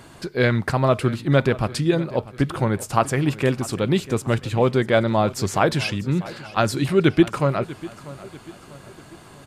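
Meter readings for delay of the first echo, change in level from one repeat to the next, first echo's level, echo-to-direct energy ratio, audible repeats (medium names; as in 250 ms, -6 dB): 643 ms, -7.0 dB, -18.0 dB, -17.0 dB, 3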